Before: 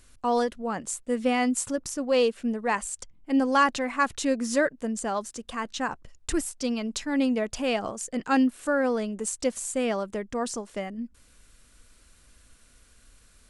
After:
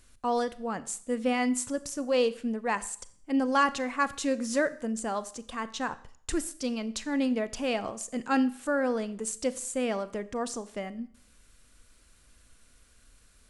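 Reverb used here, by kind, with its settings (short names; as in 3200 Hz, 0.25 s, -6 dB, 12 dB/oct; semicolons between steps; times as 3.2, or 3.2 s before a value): Schroeder reverb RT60 0.56 s, combs from 28 ms, DRR 15 dB; gain -3 dB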